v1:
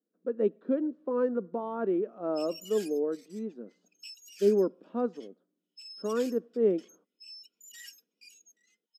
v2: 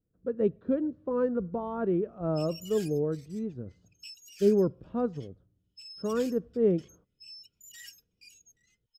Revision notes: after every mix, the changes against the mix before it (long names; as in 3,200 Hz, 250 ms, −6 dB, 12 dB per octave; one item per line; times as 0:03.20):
speech: remove high-pass filter 220 Hz 24 dB per octave
master: remove linear-phase brick-wall band-pass 170–14,000 Hz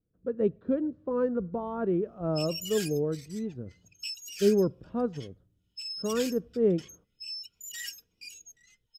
background +9.0 dB